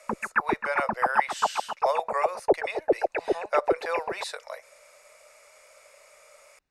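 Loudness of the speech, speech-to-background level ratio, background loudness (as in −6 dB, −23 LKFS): −32.5 LKFS, −4.0 dB, −28.5 LKFS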